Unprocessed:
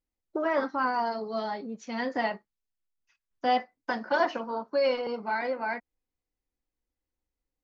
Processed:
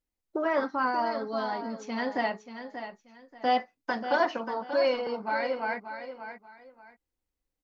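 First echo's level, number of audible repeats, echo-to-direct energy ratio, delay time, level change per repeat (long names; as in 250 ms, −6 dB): −10.0 dB, 2, −9.5 dB, 584 ms, −12.0 dB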